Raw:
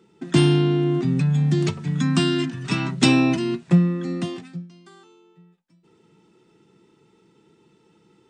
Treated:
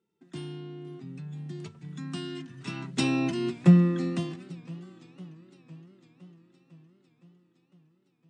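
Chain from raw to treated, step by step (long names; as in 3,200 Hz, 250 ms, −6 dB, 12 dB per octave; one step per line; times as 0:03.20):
source passing by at 0:03.83, 5 m/s, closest 1.3 metres
feedback echo with a swinging delay time 508 ms, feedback 68%, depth 204 cents, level −21.5 dB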